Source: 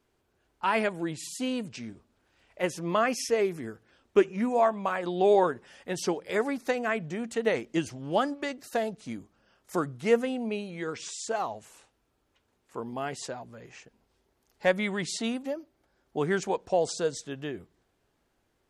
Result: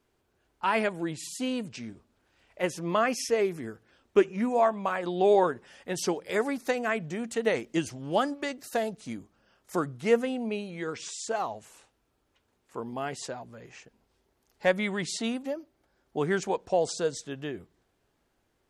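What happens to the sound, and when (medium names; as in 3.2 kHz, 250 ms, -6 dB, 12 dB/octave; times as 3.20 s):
5.95–9.14 s: treble shelf 6.5 kHz +5 dB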